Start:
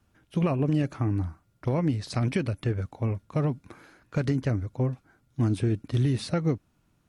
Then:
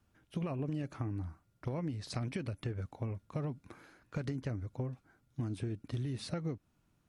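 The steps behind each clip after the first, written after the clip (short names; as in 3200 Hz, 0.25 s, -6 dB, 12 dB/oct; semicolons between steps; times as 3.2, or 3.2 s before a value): compressor, threshold -28 dBFS, peak gain reduction 8.5 dB; gain -5.5 dB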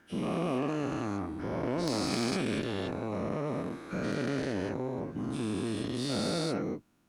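spectral dilation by 0.48 s; added harmonics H 4 -10 dB, 6 -13 dB, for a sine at -14.5 dBFS; resonant low shelf 170 Hz -7.5 dB, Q 1.5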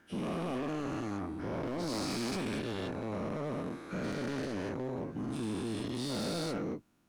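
hard clip -30 dBFS, distortion -11 dB; gain -1.5 dB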